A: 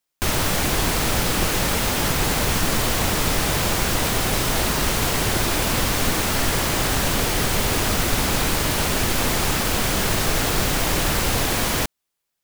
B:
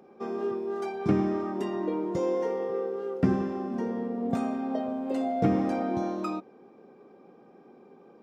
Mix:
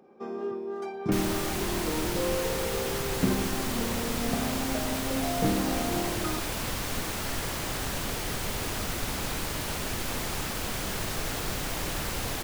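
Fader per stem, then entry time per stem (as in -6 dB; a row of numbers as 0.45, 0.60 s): -11.0, -2.5 dB; 0.90, 0.00 s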